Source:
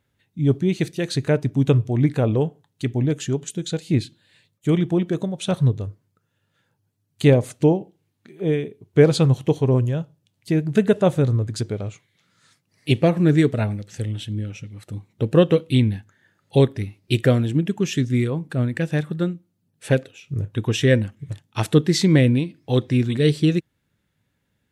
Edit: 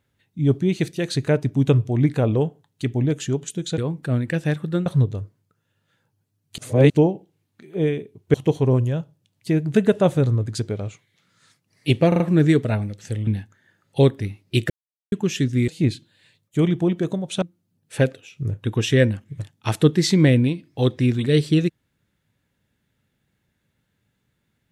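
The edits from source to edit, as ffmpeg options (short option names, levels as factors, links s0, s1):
-filter_complex "[0:a]asplit=14[s0][s1][s2][s3][s4][s5][s6][s7][s8][s9][s10][s11][s12][s13];[s0]atrim=end=3.782[s14];[s1]atrim=start=18.248:end=19.332[s15];[s2]atrim=start=5.518:end=7.242[s16];[s3]atrim=start=7.238:end=7.562,asetpts=PTS-STARTPTS,areverse[s17];[s4]atrim=start=7.558:end=9.002[s18];[s5]atrim=start=9.348:end=13.132[s19];[s6]atrim=start=13.088:end=13.132[s20];[s7]atrim=start=13.088:end=13.132[s21];[s8]atrim=start=13.088:end=14.162[s22];[s9]atrim=start=15.838:end=17.27,asetpts=PTS-STARTPTS,afade=t=out:st=1.428:d=0.004:c=hsin[s23];[s10]atrim=start=17.27:end=17.69,asetpts=PTS-STARTPTS,volume=0[s24];[s11]atrim=start=17.69:end=18.252,asetpts=PTS-STARTPTS,afade=t=in:d=0.004:c=hsin[s25];[s12]atrim=start=3.778:end=5.522[s26];[s13]atrim=start=19.328[s27];[s14][s15]acrossfade=d=0.004:c1=hsin:c2=hsin[s28];[s28][s16]acrossfade=d=0.004:c1=hsin:c2=hsin[s29];[s29][s17]acrossfade=d=0.004:c1=hsin:c2=hsin[s30];[s30][s18]acrossfade=d=0.004:c1=hsin:c2=hsin[s31];[s31][s19]acrossfade=d=0.004:c1=hsin:c2=hsin[s32];[s32][s20]acrossfade=d=0.004:c1=hsin:c2=hsin[s33];[s33][s21]acrossfade=d=0.004:c1=hsin:c2=hsin[s34];[s34][s22]acrossfade=d=0.004:c1=hsin:c2=hsin[s35];[s23][s24][s25]concat=n=3:v=0:a=1[s36];[s35][s36]acrossfade=d=0.004:c1=hsin:c2=hsin[s37];[s37][s26]acrossfade=d=0.004:c1=hsin:c2=hsin[s38];[s38][s27]acrossfade=d=0.004:c1=hsin:c2=hsin"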